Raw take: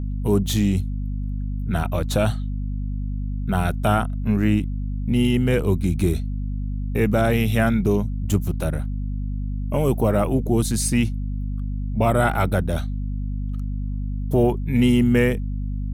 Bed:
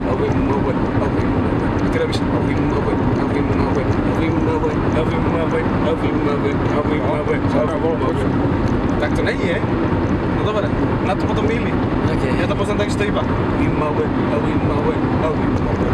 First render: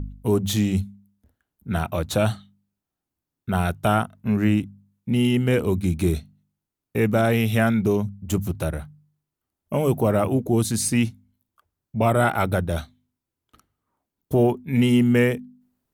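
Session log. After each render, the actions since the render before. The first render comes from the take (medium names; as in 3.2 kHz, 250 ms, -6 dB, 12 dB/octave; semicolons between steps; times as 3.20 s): de-hum 50 Hz, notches 5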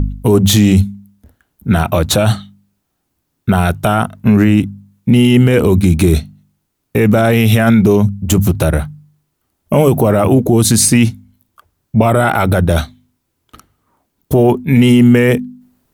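loudness maximiser +16 dB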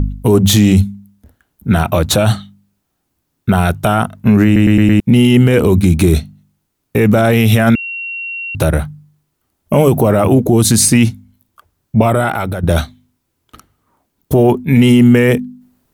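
4.45 s: stutter in place 0.11 s, 5 plays; 7.75–8.55 s: bleep 2.74 kHz -21 dBFS; 12.01–12.63 s: fade out, to -11 dB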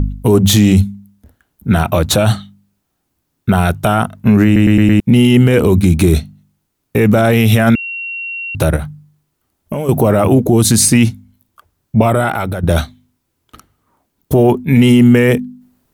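8.76–9.89 s: compression, threshold -16 dBFS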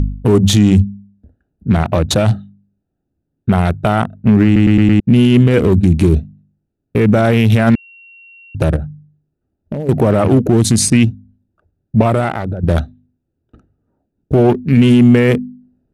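local Wiener filter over 41 samples; low-pass 8.5 kHz 12 dB/octave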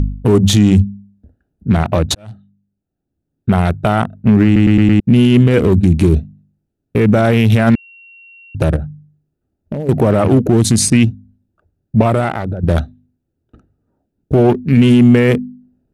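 2.15–3.51 s: fade in linear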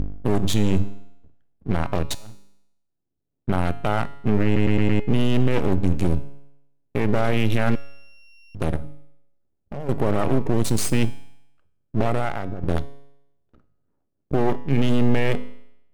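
half-wave rectifier; feedback comb 140 Hz, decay 0.81 s, harmonics all, mix 60%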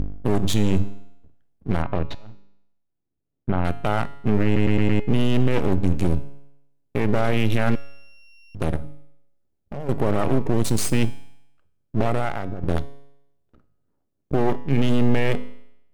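1.82–3.65 s: distance through air 300 m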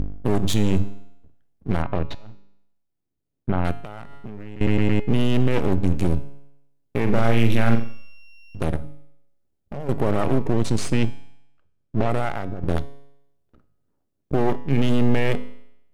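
3.80–4.61 s: compression 12:1, threshold -29 dBFS; 7.02–8.62 s: flutter echo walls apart 7.5 m, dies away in 0.39 s; 10.53–12.10 s: distance through air 64 m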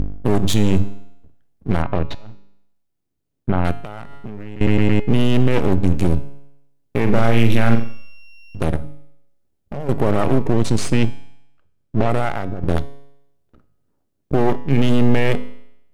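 trim +4 dB; peak limiter -1 dBFS, peak gain reduction 1.5 dB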